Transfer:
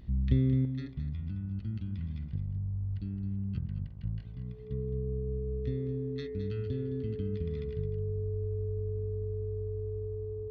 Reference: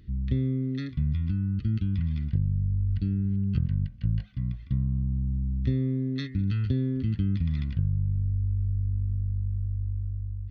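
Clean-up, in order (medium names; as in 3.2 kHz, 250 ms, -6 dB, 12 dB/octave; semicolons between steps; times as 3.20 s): de-hum 60.2 Hz, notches 21; band-stop 430 Hz, Q 30; inverse comb 215 ms -11 dB; trim 0 dB, from 0.65 s +9.5 dB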